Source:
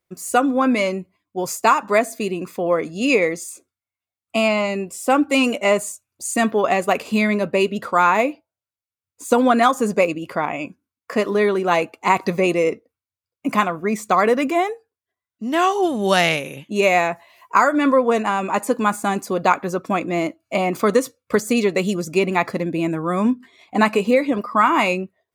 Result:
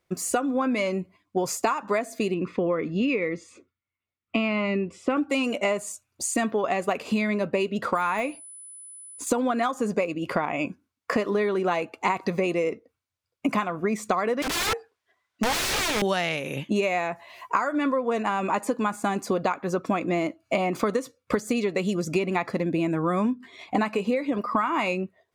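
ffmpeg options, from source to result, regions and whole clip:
ffmpeg -i in.wav -filter_complex "[0:a]asettb=1/sr,asplit=3[link_01][link_02][link_03];[link_01]atrim=end=2.344[link_04];[link_02]atrim=start=2.34:end=5.17,asetpts=PTS-STARTPTS,afade=type=in:duration=0.004:curve=qsin,afade=type=out:start_time=2.826:duration=0.004:curve=qsin,lowpass=2500,equalizer=frequency=740:width_type=o:width=0.75:gain=-11.5,bandreject=frequency=1600:width=10[link_05];[link_03]atrim=start=5.166[link_06];[link_04][link_05]acrossfade=duration=0.004:curve1=hsin:curve2=qsin[link_07];[link_07][link_06]acrossfade=duration=0.004:curve1=qsin:curve2=hsin,asettb=1/sr,asplit=3[link_08][link_09][link_10];[link_08]atrim=end=7.954[link_11];[link_09]atrim=start=7.95:end=9.27,asetpts=PTS-STARTPTS,afade=type=in:duration=0.004:curve=qsin,afade=type=out:start_time=1.316:duration=0.004:curve=qsin,deesser=0.65,equalizer=frequency=400:width_type=o:width=2.1:gain=-6.5,aeval=exprs='val(0)+0.00794*sin(2*PI*10000*n/s)':channel_layout=same[link_12];[link_10]atrim=start=9.266[link_13];[link_11][link_12]acrossfade=duration=0.004:curve1=hsin:curve2=qsin[link_14];[link_14][link_13]acrossfade=duration=0.004:curve1=qsin:curve2=hsin,asettb=1/sr,asplit=3[link_15][link_16][link_17];[link_15]atrim=end=14.424[link_18];[link_16]atrim=start=14.42:end=16.02,asetpts=PTS-STARTPTS,afade=type=in:duration=0.004:curve=qsin,afade=type=out:start_time=1.596:duration=0.004:curve=qsin,lowshelf=frequency=67:gain=5.5,asplit=2[link_19][link_20];[link_20]highpass=frequency=720:poles=1,volume=16dB,asoftclip=type=tanh:threshold=-6dB[link_21];[link_19][link_21]amix=inputs=2:normalize=0,lowpass=frequency=3700:poles=1,volume=-6dB,aeval=exprs='(mod(10*val(0)+1,2)-1)/10':channel_layout=same[link_22];[link_17]atrim=start=16.016[link_23];[link_18][link_22]acrossfade=duration=0.004:curve1=hsin:curve2=qsin[link_24];[link_24][link_23]acrossfade=duration=0.004:curve1=qsin:curve2=hsin,acompressor=threshold=-28dB:ratio=12,highshelf=frequency=10000:gain=-11.5,volume=6.5dB" out.wav

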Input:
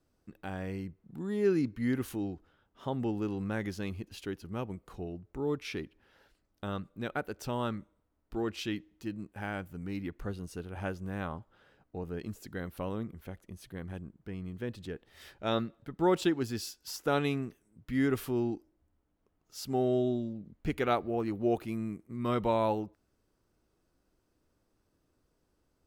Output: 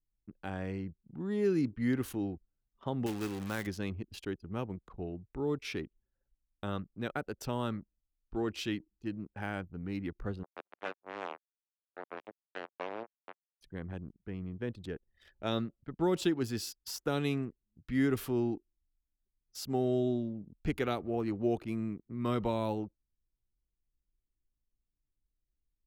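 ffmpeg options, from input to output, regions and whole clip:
ffmpeg -i in.wav -filter_complex "[0:a]asettb=1/sr,asplit=3[link_01][link_02][link_03];[link_01]atrim=end=3.064[link_04];[link_02]atrim=start=3.06:end=3.67,asetpts=PTS-STARTPTS,afade=type=in:duration=0.004:curve=qsin,afade=type=out:start_time=0.606:duration=0.004:curve=qsin,tiltshelf=frequency=1100:gain=-4,acrusher=bits=2:mode=log:mix=0:aa=0.000001[link_05];[link_03]atrim=start=3.666[link_06];[link_04][link_05]acrossfade=duration=0.004:curve1=hsin:curve2=qsin[link_07];[link_07][link_06]acrossfade=duration=0.004:curve1=qsin:curve2=hsin,asettb=1/sr,asplit=3[link_08][link_09][link_10];[link_08]atrim=end=10.434[link_11];[link_09]atrim=start=10.43:end=13.61,asetpts=PTS-STARTPTS,afade=type=in:duration=0.004:curve=qsin,afade=type=out:start_time=3.176:duration=0.004:curve=qsin,asplit=2[link_12][link_13];[link_13]adelay=92,lowpass=frequency=2000:poles=1,volume=-20dB,asplit=2[link_14][link_15];[link_15]adelay=92,lowpass=frequency=2000:poles=1,volume=0.46,asplit=2[link_16][link_17];[link_17]adelay=92,lowpass=frequency=2000:poles=1,volume=0.46[link_18];[link_12][link_14][link_16][link_18]amix=inputs=4:normalize=0,atrim=end_sample=140238,acrusher=bits=4:mix=0:aa=0.5,highpass=430,lowpass=3000[link_19];[link_10]atrim=start=13.606[link_20];[link_11][link_19]acrossfade=duration=0.004:curve1=hsin:curve2=qsin[link_21];[link_21][link_20]acrossfade=duration=0.004:curve1=qsin:curve2=hsin,anlmdn=0.01,acrossover=split=360|3000[link_22][link_23][link_24];[link_23]acompressor=threshold=-33dB:ratio=6[link_25];[link_22][link_25][link_24]amix=inputs=3:normalize=0" out.wav

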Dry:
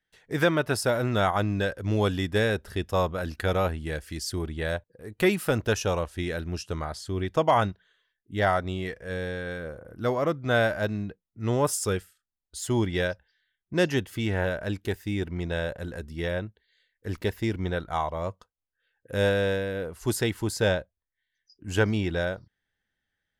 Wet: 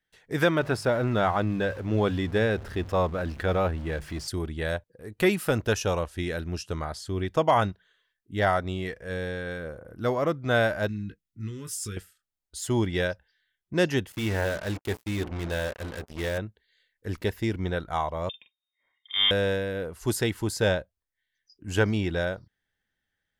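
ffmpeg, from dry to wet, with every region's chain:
ffmpeg -i in.wav -filter_complex "[0:a]asettb=1/sr,asplit=3[link_01][link_02][link_03];[link_01]atrim=end=0.594[link_04];[link_02]atrim=start=0.59:end=4.28,asetpts=PTS-STARTPTS,afade=type=in:duration=0.004:curve=qsin,afade=type=out:start_time=3.686:duration=0.004:curve=qsin,aeval=exprs='val(0)+0.5*0.0141*sgn(val(0))':channel_layout=same,lowpass=frequency=2400:poles=1,bandreject=frequency=50:width_type=h:width=6,bandreject=frequency=100:width_type=h:width=6,bandreject=frequency=150:width_type=h:width=6[link_05];[link_03]atrim=start=4.276[link_06];[link_04][link_05]acrossfade=duration=0.004:curve1=hsin:curve2=qsin[link_07];[link_07][link_06]acrossfade=duration=0.004:curve1=qsin:curve2=hsin,asettb=1/sr,asplit=3[link_08][link_09][link_10];[link_08]atrim=end=10.884[link_11];[link_09]atrim=start=10.88:end=11.97,asetpts=PTS-STARTPTS,afade=type=in:duration=0.004:curve=qsin,afade=type=out:start_time=1.086:duration=0.004:curve=qsin,acompressor=threshold=-31dB:ratio=4:attack=3.2:release=140:knee=1:detection=peak,asuperstop=centerf=700:order=4:qfactor=0.6,asplit=2[link_12][link_13];[link_13]adelay=19,volume=-7dB[link_14];[link_12][link_14]amix=inputs=2:normalize=0,atrim=end_sample=48069[link_15];[link_10]atrim=start=11.966[link_16];[link_11][link_15]acrossfade=duration=0.004:curve1=hsin:curve2=qsin[link_17];[link_17][link_16]acrossfade=duration=0.004:curve1=qsin:curve2=hsin,asettb=1/sr,asplit=3[link_18][link_19][link_20];[link_18]atrim=end=14.124[link_21];[link_19]atrim=start=14.12:end=16.38,asetpts=PTS-STARTPTS,afade=type=in:duration=0.004:curve=qsin,afade=type=out:start_time=2.256:duration=0.004:curve=qsin,equalizer=frequency=160:width_type=o:width=0.33:gain=-4,bandreject=frequency=60:width_type=h:width=6,bandreject=frequency=120:width_type=h:width=6,bandreject=frequency=180:width_type=h:width=6,bandreject=frequency=240:width_type=h:width=6,bandreject=frequency=300:width_type=h:width=6,bandreject=frequency=360:width_type=h:width=6,bandreject=frequency=420:width_type=h:width=6,acrusher=bits=5:mix=0:aa=0.5[link_22];[link_20]atrim=start=16.376[link_23];[link_21][link_22]acrossfade=duration=0.004:curve1=hsin:curve2=qsin[link_24];[link_24][link_23]acrossfade=duration=0.004:curve1=qsin:curve2=hsin,asettb=1/sr,asplit=3[link_25][link_26][link_27];[link_25]atrim=end=18.294[link_28];[link_26]atrim=start=18.29:end=19.31,asetpts=PTS-STARTPTS,afade=type=in:duration=0.004:curve=qsin,afade=type=out:start_time=1.016:duration=0.004:curve=qsin,lowpass=frequency=3100:width_type=q:width=0.5098,lowpass=frequency=3100:width_type=q:width=0.6013,lowpass=frequency=3100:width_type=q:width=0.9,lowpass=frequency=3100:width_type=q:width=2.563,afreqshift=-3700,asplit=2[link_29][link_30];[link_30]adelay=44,volume=-8.5dB[link_31];[link_29][link_31]amix=inputs=2:normalize=0,atrim=end_sample=44982[link_32];[link_27]atrim=start=19.306[link_33];[link_28][link_32]acrossfade=duration=0.004:curve1=hsin:curve2=qsin[link_34];[link_34][link_33]acrossfade=duration=0.004:curve1=qsin:curve2=hsin" out.wav

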